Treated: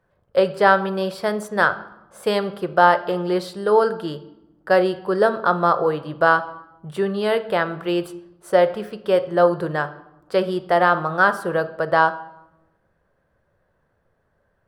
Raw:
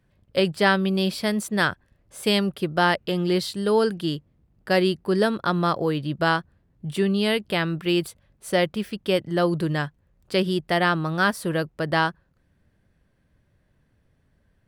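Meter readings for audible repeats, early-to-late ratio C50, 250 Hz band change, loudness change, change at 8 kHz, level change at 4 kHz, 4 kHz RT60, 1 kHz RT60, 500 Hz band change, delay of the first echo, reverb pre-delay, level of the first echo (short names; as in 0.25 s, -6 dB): none, 14.5 dB, -2.5 dB, +3.5 dB, n/a, -5.5 dB, 0.60 s, 0.90 s, +5.5 dB, none, 5 ms, none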